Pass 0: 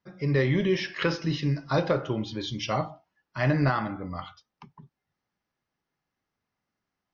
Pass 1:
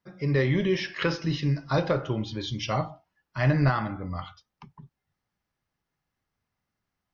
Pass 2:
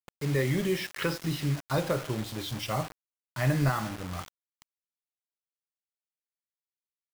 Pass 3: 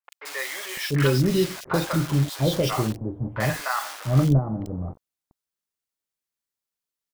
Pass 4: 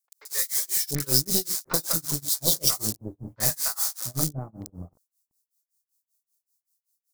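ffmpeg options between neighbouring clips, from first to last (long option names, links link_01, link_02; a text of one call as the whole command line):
ffmpeg -i in.wav -af "asubboost=boost=2:cutoff=160" out.wav
ffmpeg -i in.wav -af "acrusher=bits=5:mix=0:aa=0.000001,volume=-3.5dB" out.wav
ffmpeg -i in.wav -filter_complex "[0:a]acrossover=split=690|2400[link_01][link_02][link_03];[link_03]adelay=40[link_04];[link_01]adelay=690[link_05];[link_05][link_02][link_04]amix=inputs=3:normalize=0,volume=7.5dB" out.wav
ffmpeg -i in.wav -af "tremolo=f=5.2:d=0.98,aeval=exprs='0.251*(cos(1*acos(clip(val(0)/0.251,-1,1)))-cos(1*PI/2))+0.112*(cos(2*acos(clip(val(0)/0.251,-1,1)))-cos(2*PI/2))':channel_layout=same,aexciter=amount=10.3:drive=5.6:freq=4300,volume=-7dB" out.wav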